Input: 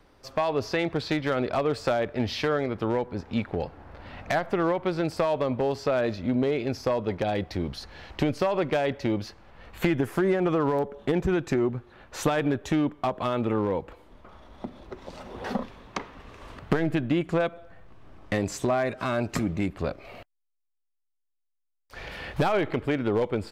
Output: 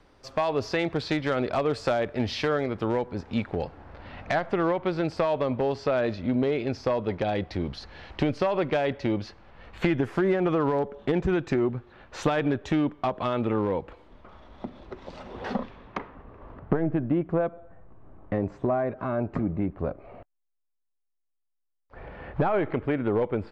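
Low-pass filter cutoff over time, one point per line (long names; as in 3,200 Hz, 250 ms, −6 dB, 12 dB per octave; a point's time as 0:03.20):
0:03.58 8,800 Hz
0:04.08 4,900 Hz
0:15.49 4,900 Hz
0:16.03 2,100 Hz
0:16.25 1,100 Hz
0:22.13 1,100 Hz
0:22.73 2,100 Hz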